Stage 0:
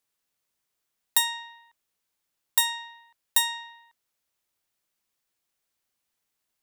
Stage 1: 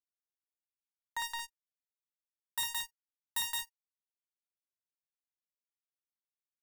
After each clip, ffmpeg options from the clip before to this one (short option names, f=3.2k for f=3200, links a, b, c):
-filter_complex "[0:a]acrossover=split=2300[a][b];[a]aeval=exprs='val(0)*(1-1/2+1/2*cos(2*PI*5.1*n/s))':c=same[c];[b]aeval=exprs='val(0)*(1-1/2-1/2*cos(2*PI*5.1*n/s))':c=same[d];[c][d]amix=inputs=2:normalize=0,aecho=1:1:55.39|169.1|227.4:0.631|0.708|0.316,acrusher=bits=4:mix=0:aa=0.5,volume=-6dB"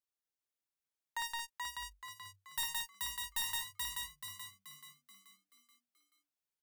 -filter_complex "[0:a]aeval=exprs='clip(val(0),-1,0.0224)':c=same,asplit=7[a][b][c][d][e][f][g];[b]adelay=431,afreqshift=48,volume=-3dB[h];[c]adelay=862,afreqshift=96,volume=-10.1dB[i];[d]adelay=1293,afreqshift=144,volume=-17.3dB[j];[e]adelay=1724,afreqshift=192,volume=-24.4dB[k];[f]adelay=2155,afreqshift=240,volume=-31.5dB[l];[g]adelay=2586,afreqshift=288,volume=-38.7dB[m];[a][h][i][j][k][l][m]amix=inputs=7:normalize=0,volume=-1dB"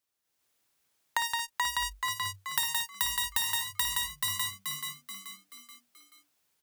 -af "acompressor=threshold=-44dB:ratio=16,highpass=42,dynaudnorm=f=220:g=3:m=9.5dB,volume=8.5dB"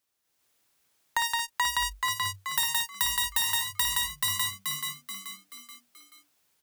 -af "asoftclip=type=tanh:threshold=-19dB,volume=4dB"